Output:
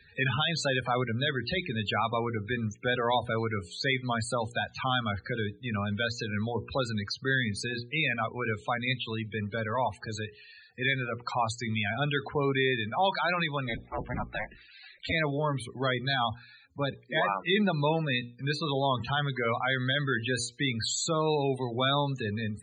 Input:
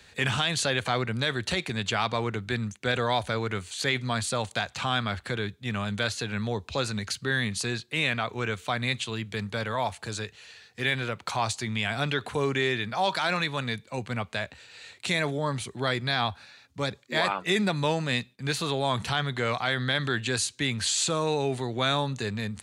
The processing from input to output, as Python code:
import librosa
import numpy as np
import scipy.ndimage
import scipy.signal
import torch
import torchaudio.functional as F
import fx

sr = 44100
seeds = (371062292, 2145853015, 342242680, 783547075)

y = fx.cycle_switch(x, sr, every=2, mode='inverted', at=(13.66, 15.11), fade=0.02)
y = fx.spec_topn(y, sr, count=32)
y = fx.hum_notches(y, sr, base_hz=60, count=8)